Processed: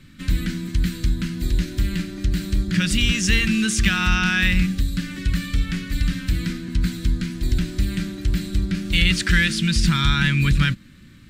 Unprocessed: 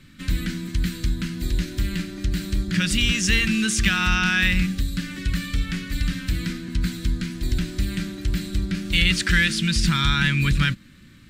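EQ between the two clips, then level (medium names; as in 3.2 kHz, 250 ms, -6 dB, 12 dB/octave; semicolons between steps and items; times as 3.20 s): bass shelf 320 Hz +3 dB; 0.0 dB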